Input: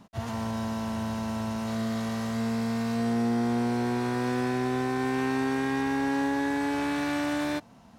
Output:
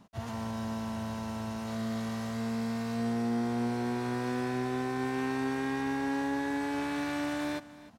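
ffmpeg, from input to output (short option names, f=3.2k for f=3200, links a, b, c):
-af "aecho=1:1:304:0.133,volume=-4.5dB"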